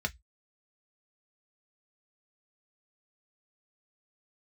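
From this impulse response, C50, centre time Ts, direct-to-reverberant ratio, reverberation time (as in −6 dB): 27.5 dB, 4 ms, 4.5 dB, 0.10 s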